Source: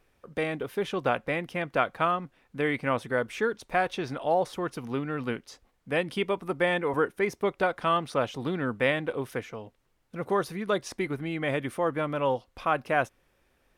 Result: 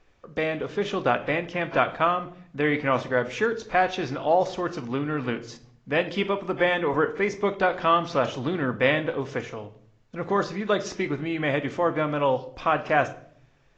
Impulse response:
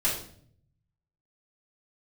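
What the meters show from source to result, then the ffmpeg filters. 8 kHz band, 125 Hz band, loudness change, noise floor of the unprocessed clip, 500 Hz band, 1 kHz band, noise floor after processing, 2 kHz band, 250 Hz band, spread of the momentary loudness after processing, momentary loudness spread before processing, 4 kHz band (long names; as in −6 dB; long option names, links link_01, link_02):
can't be measured, +3.0 dB, +3.5 dB, −70 dBFS, +3.5 dB, +4.0 dB, −59 dBFS, +3.5 dB, +3.5 dB, 8 LU, 7 LU, +4.0 dB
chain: -filter_complex "[0:a]asplit=2[link_01][link_02];[1:a]atrim=start_sample=2205[link_03];[link_02][link_03]afir=irnorm=-1:irlink=0,volume=-18dB[link_04];[link_01][link_04]amix=inputs=2:normalize=0,volume=2.5dB" -ar 16000 -c:a aac -b:a 32k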